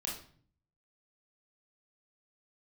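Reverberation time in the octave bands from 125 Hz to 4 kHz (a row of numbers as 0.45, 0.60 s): 0.90, 0.75, 0.55, 0.45, 0.45, 0.40 s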